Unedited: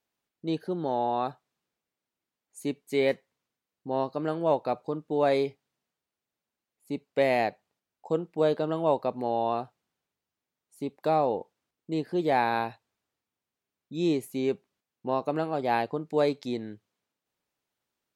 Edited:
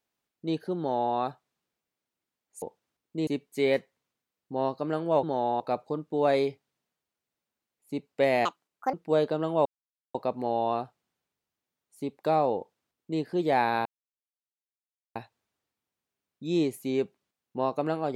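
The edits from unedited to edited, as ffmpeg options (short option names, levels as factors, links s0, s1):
-filter_complex "[0:a]asplit=9[s0][s1][s2][s3][s4][s5][s6][s7][s8];[s0]atrim=end=2.622[s9];[s1]atrim=start=11.358:end=12.012[s10];[s2]atrim=start=2.618:end=4.582[s11];[s3]atrim=start=0.778:end=1.152[s12];[s4]atrim=start=4.578:end=7.434[s13];[s5]atrim=start=7.43:end=8.22,asetpts=PTS-STARTPTS,asetrate=71883,aresample=44100[s14];[s6]atrim=start=8.216:end=8.94,asetpts=PTS-STARTPTS,afade=t=out:st=0.72:d=0.004:c=hsin,apad=pad_dur=0.49[s15];[s7]atrim=start=8.94:end=12.65,asetpts=PTS-STARTPTS,afade=t=in:d=0.004:c=hsin,afade=t=out:st=3.706:d=0.004:c=hsin,apad=pad_dur=1.3[s16];[s8]atrim=start=12.65,asetpts=PTS-STARTPTS,afade=t=in:d=0.004:c=hsin[s17];[s9][s10]acrossfade=d=0.004:c1=hsin:c2=hsin[s18];[s18][s11]acrossfade=d=0.004:c1=hsin:c2=hsin[s19];[s19][s12]acrossfade=d=0.004:c1=hsin:c2=hsin[s20];[s20][s13]acrossfade=d=0.004:c1=hsin:c2=hsin[s21];[s21][s14]acrossfade=d=0.004:c1=hsin:c2=hsin[s22];[s15][s16][s17]concat=n=3:v=0:a=1[s23];[s22][s23]acrossfade=d=0.004:c1=hsin:c2=hsin"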